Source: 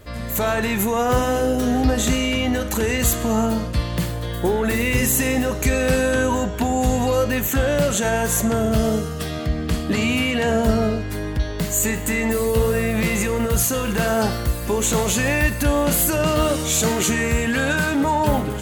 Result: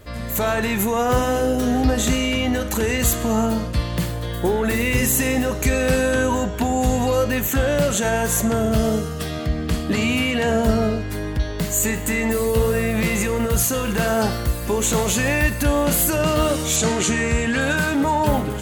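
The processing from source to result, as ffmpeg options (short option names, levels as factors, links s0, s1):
-filter_complex "[0:a]asettb=1/sr,asplit=3[s0][s1][s2];[s0]atrim=end=16.764[s3];[s1]atrim=start=16.76:end=17.61,asetpts=PTS-STARTPTS,afade=t=in:d=0.004:c=qsin,afade=t=out:st=0.846:d=0.004:c=qsin,lowpass=f=9300:w=0.5412,lowpass=f=9300:w=1.3066[s4];[s2]atrim=start=17.606[s5];[s3][s4]acrossfade=d=0.004:c1=hsin:c2=qsin[s6];[s6][s5]acrossfade=d=0.004:c1=qsin:c2=hsin"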